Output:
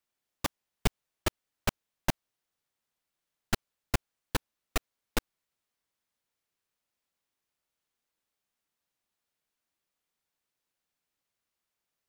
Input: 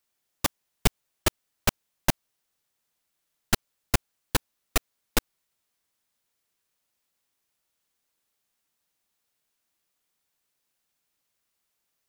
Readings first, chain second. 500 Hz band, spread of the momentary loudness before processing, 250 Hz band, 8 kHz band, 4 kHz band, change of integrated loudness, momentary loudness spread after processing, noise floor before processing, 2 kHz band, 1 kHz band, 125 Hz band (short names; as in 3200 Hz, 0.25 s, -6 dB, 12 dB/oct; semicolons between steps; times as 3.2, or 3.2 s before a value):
-4.5 dB, 2 LU, -4.5 dB, -9.0 dB, -6.5 dB, -6.5 dB, 2 LU, -79 dBFS, -5.5 dB, -4.5 dB, -4.5 dB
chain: high shelf 4900 Hz -6 dB; gain -4.5 dB